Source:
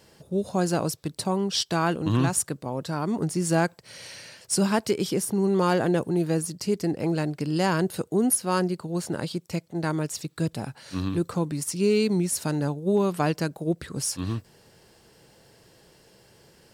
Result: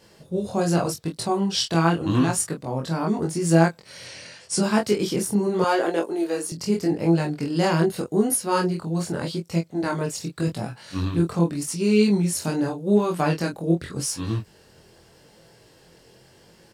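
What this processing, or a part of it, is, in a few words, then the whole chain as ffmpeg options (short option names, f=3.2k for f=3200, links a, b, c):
double-tracked vocal: -filter_complex "[0:a]asettb=1/sr,asplit=3[a][b][c];[a]atrim=end=4.044[d];[b]atrim=start=4.04:end=4.63,asetpts=PTS-STARTPTS,afade=t=in:d=0.004:c=qsin,afade=t=out:st=0.586:d=0.004:c=qsin,lowpass=f=9.9k:w=0.5412,lowpass=f=9.9k:w=1.3066[e];[c]atrim=start=4.626[f];[d][e]acrossfade=d=0.004:c1=hsin:c2=qsin[g];[g][f]acrossfade=d=0.004:c1=qsin:c2=hsin,asplit=2[h][i];[i]adelay=24,volume=-5dB[j];[h][j]amix=inputs=2:normalize=0,flanger=delay=18:depth=6.4:speed=0.84,highshelf=f=11k:g=-5,asettb=1/sr,asplit=3[k][l][m];[k]atrim=end=5.644[n];[l]atrim=start=5.64:end=6.52,asetpts=PTS-STARTPTS,afade=t=in:d=0.004:c=qsin,afade=t=out:st=0.876:d=0.004:c=qsin,highpass=f=310:w=0.5412,highpass=f=310:w=1.3066[o];[m]atrim=start=6.516[p];[n][o]acrossfade=d=0.004:c1=hsin:c2=qsin[q];[q][p]acrossfade=d=0.004:c1=qsin:c2=hsin,volume=4.5dB"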